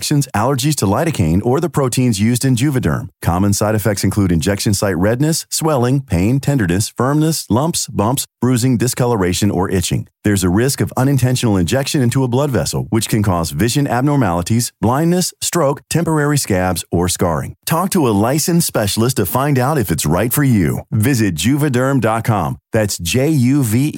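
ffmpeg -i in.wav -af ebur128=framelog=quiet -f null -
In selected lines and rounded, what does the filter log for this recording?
Integrated loudness:
  I:         -15.4 LUFS
  Threshold: -25.4 LUFS
Loudness range:
  LRA:         0.9 LU
  Threshold: -35.5 LUFS
  LRA low:   -15.8 LUFS
  LRA high:  -14.9 LUFS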